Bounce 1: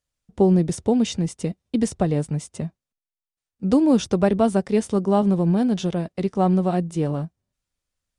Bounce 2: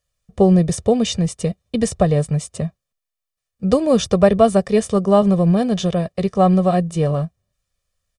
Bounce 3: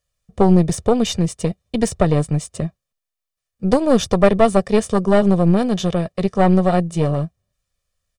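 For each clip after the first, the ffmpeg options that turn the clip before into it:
-af "aecho=1:1:1.7:0.65,volume=4.5dB"
-af "aeval=exprs='(tanh(2.82*val(0)+0.75)-tanh(0.75))/2.82':c=same,volume=4dB"

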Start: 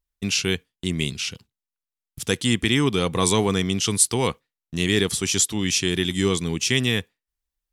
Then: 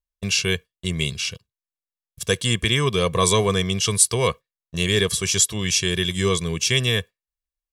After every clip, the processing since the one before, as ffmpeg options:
-af "agate=range=-11dB:threshold=-35dB:ratio=16:detection=peak,aecho=1:1:1.8:0.73"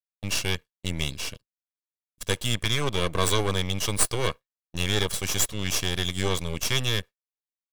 -af "agate=range=-33dB:threshold=-33dB:ratio=3:detection=peak,aeval=exprs='max(val(0),0)':c=same,volume=-2dB"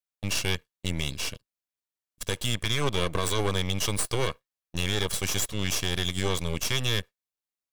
-af "alimiter=limit=-14.5dB:level=0:latency=1:release=105,volume=1dB"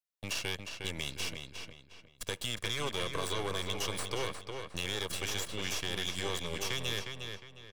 -filter_complex "[0:a]acrossover=split=330|5100[a][b][c];[a]acompressor=threshold=-37dB:ratio=4[d];[b]acompressor=threshold=-29dB:ratio=4[e];[c]acompressor=threshold=-39dB:ratio=4[f];[d][e][f]amix=inputs=3:normalize=0,asplit=2[g][h];[h]adelay=358,lowpass=f=4.7k:p=1,volume=-5.5dB,asplit=2[i][j];[j]adelay=358,lowpass=f=4.7k:p=1,volume=0.35,asplit=2[k][l];[l]adelay=358,lowpass=f=4.7k:p=1,volume=0.35,asplit=2[m][n];[n]adelay=358,lowpass=f=4.7k:p=1,volume=0.35[o];[g][i][k][m][o]amix=inputs=5:normalize=0,volume=-4dB"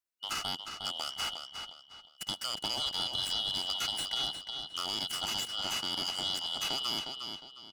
-af "afftfilt=real='real(if(lt(b,272),68*(eq(floor(b/68),0)*1+eq(floor(b/68),1)*3+eq(floor(b/68),2)*0+eq(floor(b/68),3)*2)+mod(b,68),b),0)':imag='imag(if(lt(b,272),68*(eq(floor(b/68),0)*1+eq(floor(b/68),1)*3+eq(floor(b/68),2)*0+eq(floor(b/68),3)*2)+mod(b,68),b),0)':win_size=2048:overlap=0.75"

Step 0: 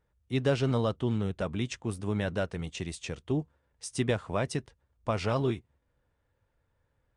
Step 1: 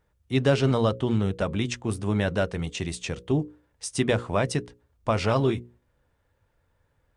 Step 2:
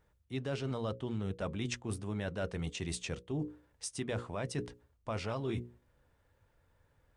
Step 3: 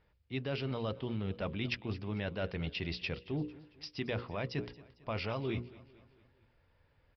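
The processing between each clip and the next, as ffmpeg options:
-af "bandreject=f=60:t=h:w=6,bandreject=f=120:t=h:w=6,bandreject=f=180:t=h:w=6,bandreject=f=240:t=h:w=6,bandreject=f=300:t=h:w=6,bandreject=f=360:t=h:w=6,bandreject=f=420:t=h:w=6,bandreject=f=480:t=h:w=6,bandreject=f=540:t=h:w=6,volume=6dB"
-af "alimiter=limit=-14dB:level=0:latency=1:release=102,areverse,acompressor=threshold=-33dB:ratio=6,areverse,volume=-1dB"
-af "aexciter=amount=1.8:drive=4.6:freq=2.1k,aecho=1:1:225|450|675|900:0.1|0.049|0.024|0.0118,aresample=11025,aresample=44100"

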